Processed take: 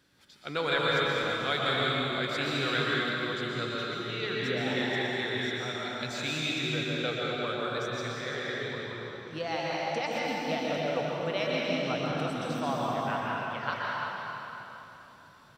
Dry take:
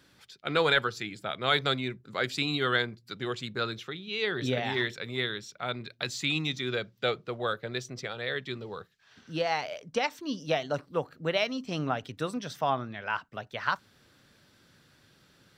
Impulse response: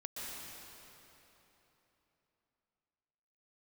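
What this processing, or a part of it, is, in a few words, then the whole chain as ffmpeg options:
cave: -filter_complex "[0:a]aecho=1:1:339:0.316[link_01];[1:a]atrim=start_sample=2205[link_02];[link_01][link_02]afir=irnorm=-1:irlink=0"

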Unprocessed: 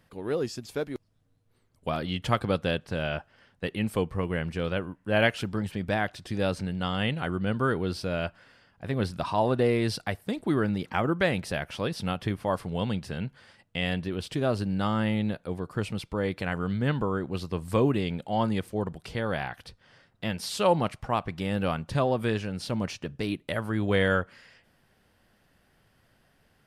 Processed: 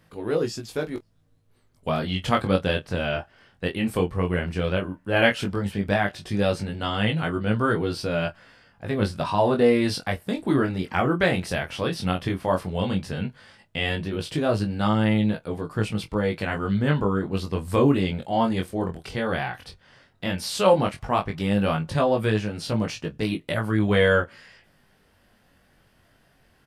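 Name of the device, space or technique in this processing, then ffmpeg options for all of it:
double-tracked vocal: -filter_complex "[0:a]asplit=2[link_01][link_02];[link_02]adelay=25,volume=-13dB[link_03];[link_01][link_03]amix=inputs=2:normalize=0,flanger=delay=18.5:depth=3.9:speed=0.13,volume=7dB"

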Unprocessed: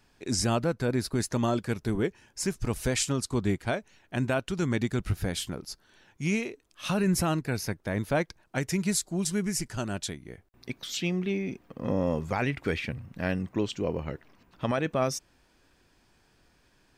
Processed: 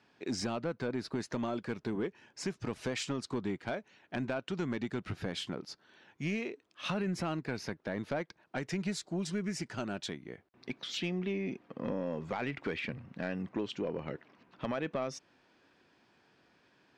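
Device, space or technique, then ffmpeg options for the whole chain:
AM radio: -af "highpass=170,lowpass=4000,acompressor=threshold=-30dB:ratio=4,asoftclip=type=tanh:threshold=-24.5dB"

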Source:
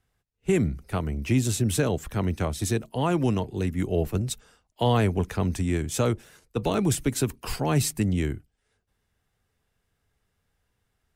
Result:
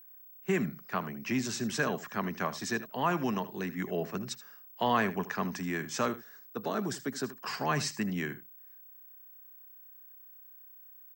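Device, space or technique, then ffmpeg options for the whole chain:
old television with a line whistle: -filter_complex "[0:a]highpass=frequency=180:width=0.5412,highpass=frequency=180:width=1.3066,equalizer=frequency=310:width_type=q:width=4:gain=-8,equalizer=frequency=490:width_type=q:width=4:gain=-6,equalizer=frequency=1100:width_type=q:width=4:gain=7,equalizer=frequency=1700:width_type=q:width=4:gain=9,equalizer=frequency=3500:width_type=q:width=4:gain=-5,equalizer=frequency=5400:width_type=q:width=4:gain=5,lowpass=frequency=6600:width=0.5412,lowpass=frequency=6600:width=1.3066,aeval=exprs='val(0)+0.00398*sin(2*PI*15734*n/s)':channel_layout=same,asettb=1/sr,asplit=3[link_01][link_02][link_03];[link_01]atrim=end=6.084[link_04];[link_02]atrim=start=6.08:end=7.46,asetpts=PTS-STARTPTS,afade=type=in:duration=0.004:curve=qsin,afade=type=out:start_time=1.376:duration=0.004:curve=qsin,equalizer=frequency=160:width_type=o:width=0.67:gain=-6,equalizer=frequency=1000:width_type=o:width=0.67:gain=-6,equalizer=frequency=2500:width_type=o:width=0.67:gain=-11,equalizer=frequency=6300:width_type=o:width=0.67:gain=-4[link_05];[link_03]atrim=start=7.456[link_06];[link_04][link_05]acrossfade=duration=0.004:curve1=hsin:curve2=qsin[link_07];[link_07][link_06]acrossfade=duration=0.004:curve1=qsin:curve2=hsin,aecho=1:1:78:0.168,volume=-3.5dB"

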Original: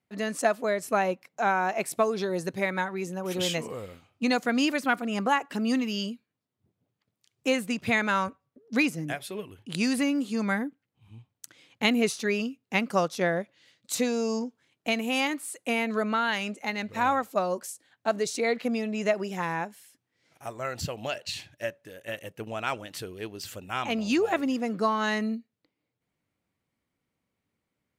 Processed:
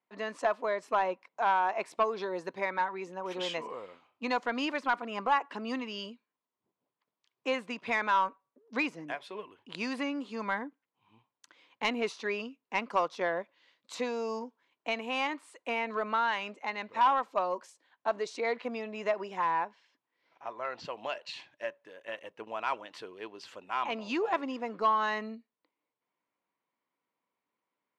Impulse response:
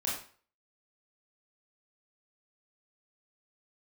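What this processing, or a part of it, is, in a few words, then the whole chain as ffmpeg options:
intercom: -filter_complex "[0:a]asettb=1/sr,asplit=3[link_01][link_02][link_03];[link_01]atrim=end=19.514[link_04];[link_02]atrim=start=19.51:end=20.85,asetpts=PTS-STARTPTS,afade=type=in:duration=0.004:curve=qsin,afade=type=out:start_time=1.336:duration=0.004:curve=qsin,lowpass=frequency=5700:width=0.5412,lowpass=frequency=5700:width=1.3066[link_05];[link_03]atrim=start=20.846[link_06];[link_04][link_05]acrossfade=duration=0.004:curve1=hsin:curve2=qsin[link_07];[link_07][link_06]acrossfade=duration=0.004:curve1=qsin:curve2=hsin,highpass=340,lowpass=3800,equalizer=frequency=1000:width_type=o:width=0.32:gain=11.5,asoftclip=type=tanh:threshold=-13dB,volume=-4dB"

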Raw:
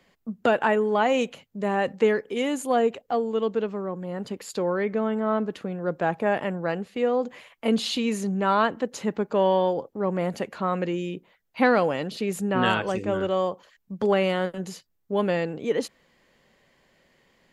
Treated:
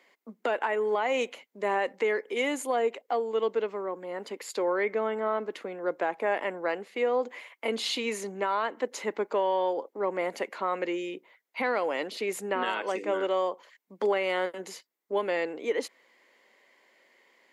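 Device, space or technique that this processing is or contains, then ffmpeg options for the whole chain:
laptop speaker: -af "highpass=frequency=300:width=0.5412,highpass=frequency=300:width=1.3066,equalizer=frequency=970:width_type=o:width=0.23:gain=4.5,equalizer=frequency=2100:width_type=o:width=0.23:gain=9,alimiter=limit=-16.5dB:level=0:latency=1:release=214,volume=-1.5dB"

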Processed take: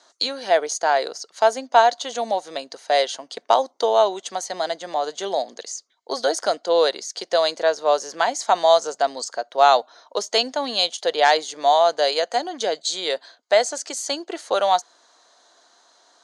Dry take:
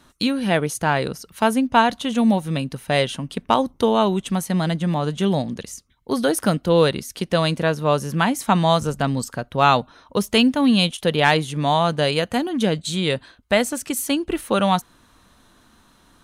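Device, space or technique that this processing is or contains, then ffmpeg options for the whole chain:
phone speaker on a table: -af "highpass=frequency=420:width=0.5412,highpass=frequency=420:width=1.3066,equalizer=frequency=690:width_type=q:width=4:gain=8,equalizer=frequency=1200:width_type=q:width=4:gain=-3,equalizer=frequency=2600:width_type=q:width=4:gain=-8,equalizer=frequency=4600:width_type=q:width=4:gain=10,equalizer=frequency=6600:width_type=q:width=4:gain=9,lowpass=frequency=7700:width=0.5412,lowpass=frequency=7700:width=1.3066,volume=-1dB"

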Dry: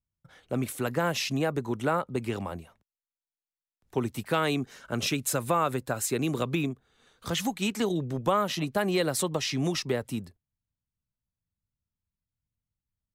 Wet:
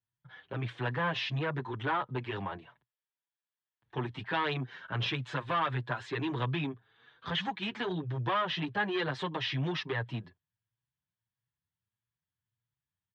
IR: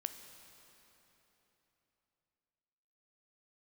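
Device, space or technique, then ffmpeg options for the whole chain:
barber-pole flanger into a guitar amplifier: -filter_complex "[0:a]asplit=2[link_01][link_02];[link_02]adelay=6.9,afreqshift=1.6[link_03];[link_01][link_03]amix=inputs=2:normalize=1,asoftclip=type=tanh:threshold=-27dB,highpass=110,equalizer=frequency=120:width_type=q:width=4:gain=9,equalizer=frequency=230:width_type=q:width=4:gain=-7,equalizer=frequency=540:width_type=q:width=4:gain=-4,equalizer=frequency=960:width_type=q:width=4:gain=7,equalizer=frequency=1700:width_type=q:width=4:gain=10,equalizer=frequency=3300:width_type=q:width=4:gain=7,lowpass=frequency=3800:width=0.5412,lowpass=frequency=3800:width=1.3066"

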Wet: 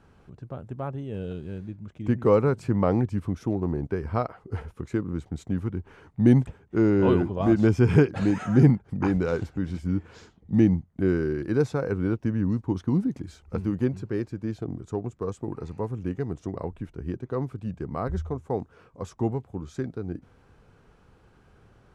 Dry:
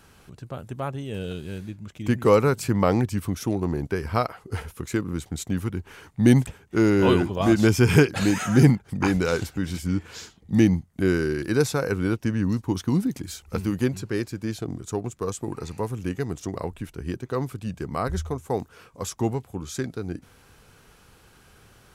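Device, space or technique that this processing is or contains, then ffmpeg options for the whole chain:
through cloth: -af "lowpass=8700,highshelf=frequency=2000:gain=-16,volume=-1dB"

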